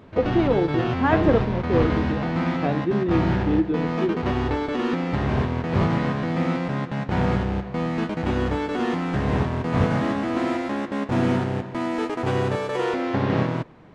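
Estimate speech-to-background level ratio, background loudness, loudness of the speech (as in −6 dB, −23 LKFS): 0.0 dB, −24.5 LKFS, −24.5 LKFS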